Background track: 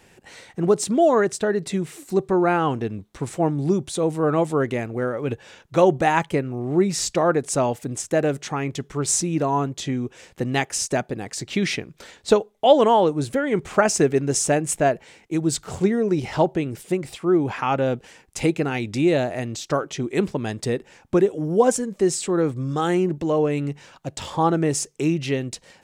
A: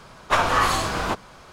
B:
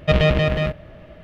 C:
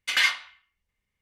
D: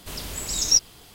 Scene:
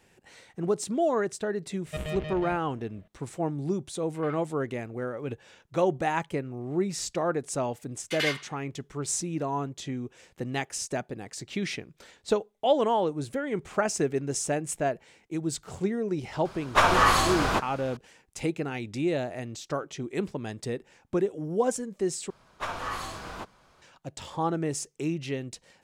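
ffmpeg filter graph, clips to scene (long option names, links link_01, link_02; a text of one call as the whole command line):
ffmpeg -i bed.wav -i cue0.wav -i cue1.wav -i cue2.wav -filter_complex "[3:a]asplit=2[link_01][link_02];[1:a]asplit=2[link_03][link_04];[0:a]volume=-8.5dB[link_05];[link_01]lowpass=1000[link_06];[link_05]asplit=2[link_07][link_08];[link_07]atrim=end=22.304[link_09];[link_04]atrim=end=1.52,asetpts=PTS-STARTPTS,volume=-14dB[link_10];[link_08]atrim=start=23.816[link_11];[2:a]atrim=end=1.23,asetpts=PTS-STARTPTS,volume=-18dB,afade=type=in:duration=0.004:curve=hsin,afade=type=out:start_time=1.226:duration=0.004:curve=hsin,adelay=1850[link_12];[link_06]atrim=end=1.21,asetpts=PTS-STARTPTS,volume=-14.5dB,afade=type=in:duration=0.004:curve=hsin,afade=type=out:start_time=1.206:duration=0.004:curve=hsin,adelay=4060[link_13];[link_02]atrim=end=1.21,asetpts=PTS-STARTPTS,volume=-7.5dB,afade=type=in:duration=0.004:curve=hsin,afade=type=out:start_time=1.206:duration=0.004:curve=hsin,adelay=8030[link_14];[link_03]atrim=end=1.52,asetpts=PTS-STARTPTS,volume=-0.5dB,afade=type=in:duration=0.004:curve=hsin,afade=type=out:start_time=1.516:duration=0.004:curve=hsin,adelay=16450[link_15];[link_09][link_10]acrossfade=duration=0.004:curve1=hsin:curve2=hsin[link_16];[link_16][link_11]acrossfade=duration=0.004:curve1=hsin:curve2=hsin[link_17];[link_17][link_12][link_13][link_14][link_15]amix=inputs=5:normalize=0" out.wav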